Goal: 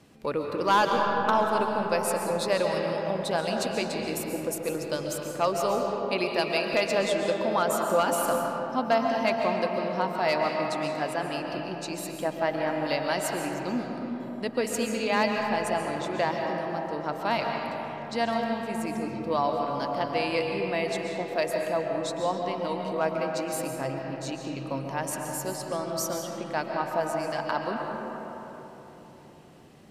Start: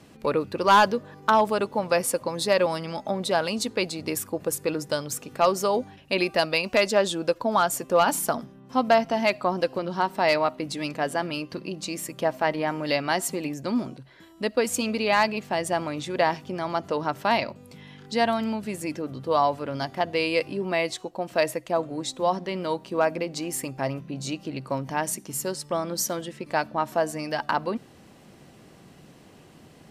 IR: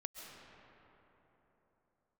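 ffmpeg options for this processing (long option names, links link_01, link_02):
-filter_complex "[0:a]asettb=1/sr,asplit=3[link_01][link_02][link_03];[link_01]atrim=end=16.444[link_04];[link_02]atrim=start=16.44:end=17.04,asetpts=PTS-STARTPTS,afade=type=in:duration=0.004:curve=qsin,afade=type=out:start_time=0.596:duration=0.004:curve=qsin,equalizer=frequency=1800:width=0.35:gain=-8.5[link_05];[link_03]atrim=start=17.036[link_06];[link_04][link_05]acrossfade=duration=0.004:curve1=hsin:curve2=qsin[link_07];[link_07][link_06]acrossfade=duration=0.004:curve1=qsin:curve2=hsin[link_08];[1:a]atrim=start_sample=2205[link_09];[link_08][link_09]afir=irnorm=-1:irlink=0"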